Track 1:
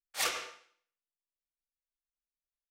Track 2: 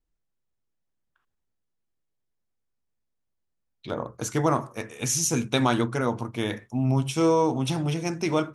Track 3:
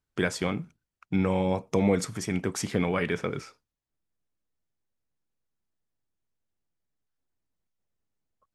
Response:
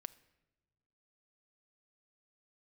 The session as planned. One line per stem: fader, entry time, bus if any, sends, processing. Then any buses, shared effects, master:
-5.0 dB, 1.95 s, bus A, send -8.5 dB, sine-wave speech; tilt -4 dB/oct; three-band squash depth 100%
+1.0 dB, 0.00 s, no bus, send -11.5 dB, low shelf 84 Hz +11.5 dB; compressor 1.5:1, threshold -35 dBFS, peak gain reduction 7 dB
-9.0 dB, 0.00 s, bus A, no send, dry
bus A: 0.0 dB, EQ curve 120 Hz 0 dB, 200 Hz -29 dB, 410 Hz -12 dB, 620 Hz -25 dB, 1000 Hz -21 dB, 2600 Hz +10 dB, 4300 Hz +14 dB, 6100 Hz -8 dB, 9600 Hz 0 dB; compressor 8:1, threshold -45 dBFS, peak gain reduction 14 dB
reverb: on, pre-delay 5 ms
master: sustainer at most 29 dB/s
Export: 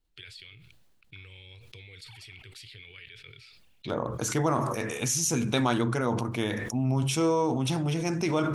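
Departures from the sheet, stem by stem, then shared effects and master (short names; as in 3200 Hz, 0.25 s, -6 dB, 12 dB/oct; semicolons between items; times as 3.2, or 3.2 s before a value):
stem 1 -5.0 dB -> -16.5 dB; stem 2: missing low shelf 84 Hz +11.5 dB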